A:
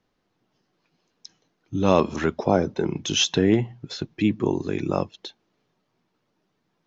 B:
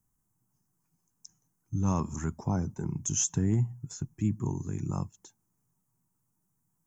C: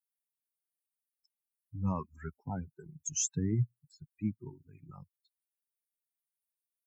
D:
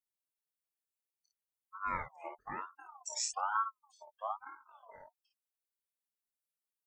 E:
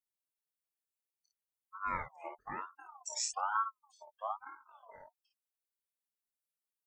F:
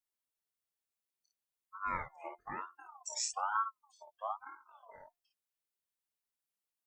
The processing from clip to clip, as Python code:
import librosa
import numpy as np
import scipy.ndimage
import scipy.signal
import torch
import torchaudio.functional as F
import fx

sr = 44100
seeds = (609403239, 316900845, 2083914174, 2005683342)

y1 = fx.curve_eq(x, sr, hz=(130.0, 560.0, 930.0, 4000.0, 7800.0), db=(0, -24, -10, -29, 13))
y1 = y1 * librosa.db_to_amplitude(1.0)
y2 = fx.bin_expand(y1, sr, power=3.0)
y3 = fx.room_early_taps(y2, sr, ms=(26, 54), db=(-5.5, -4.5))
y3 = fx.ring_lfo(y3, sr, carrier_hz=990.0, swing_pct=25, hz=1.1)
y3 = y3 * librosa.db_to_amplitude(-3.0)
y4 = y3
y5 = fx.comb_fb(y4, sr, f0_hz=350.0, decay_s=0.35, harmonics='all', damping=0.0, mix_pct=30)
y5 = y5 * librosa.db_to_amplitude(2.5)